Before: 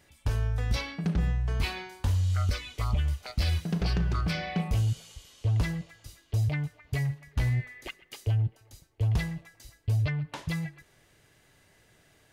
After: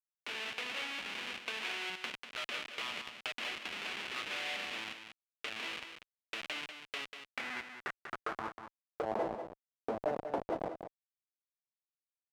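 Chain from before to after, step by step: low-pass opened by the level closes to 1100 Hz, open at -24 dBFS; steep high-pass 210 Hz 96 dB/oct; tilt shelf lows +9.5 dB, about 1100 Hz; in parallel at -1 dB: compressor 20:1, threshold -42 dBFS, peak gain reduction 17 dB; on the sum: Schmitt trigger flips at -35.5 dBFS; power-law curve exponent 2; band-pass sweep 2700 Hz -> 640 Hz, 7.12–9.28; on a send: echo 0.192 s -8.5 dB; on the sum: gain +16.5 dB

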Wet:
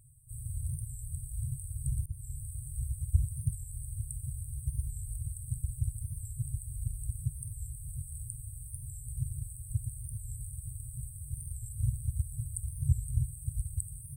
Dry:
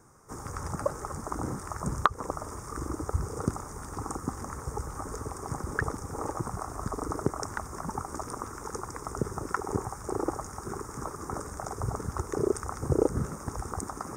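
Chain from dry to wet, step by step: FFT band-reject 150–7900 Hz; dynamic EQ 180 Hz, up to -4 dB, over -51 dBFS, Q 1.8; record warp 45 rpm, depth 100 cents; gain +4 dB

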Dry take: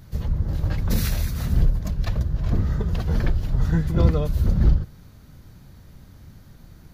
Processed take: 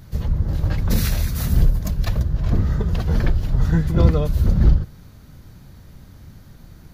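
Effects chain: 1.34–2.2 high shelf 6200 Hz -> 9200 Hz +10 dB; gain +3 dB

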